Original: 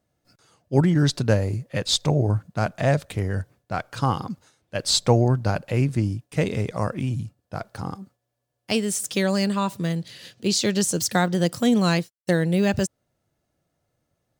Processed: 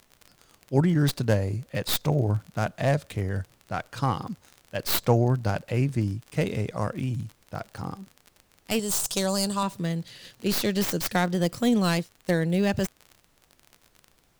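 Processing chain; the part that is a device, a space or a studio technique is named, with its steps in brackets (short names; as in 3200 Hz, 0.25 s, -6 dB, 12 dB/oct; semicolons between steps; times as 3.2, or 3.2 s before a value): record under a worn stylus (tracing distortion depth 0.19 ms; crackle 36/s -31 dBFS; pink noise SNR 38 dB); 8.79–9.63 ten-band EQ 125 Hz +6 dB, 250 Hz -7 dB, 1000 Hz +5 dB, 2000 Hz -10 dB, 4000 Hz +4 dB, 8000 Hz +9 dB, 16000 Hz +4 dB; gain -3 dB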